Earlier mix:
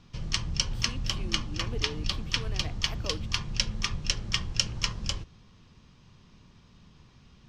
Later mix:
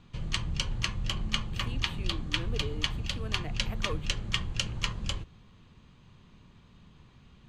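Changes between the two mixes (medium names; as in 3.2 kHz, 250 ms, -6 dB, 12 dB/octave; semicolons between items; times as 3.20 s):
speech: entry +0.80 s; master: add peaking EQ 5.4 kHz -14.5 dB 0.32 oct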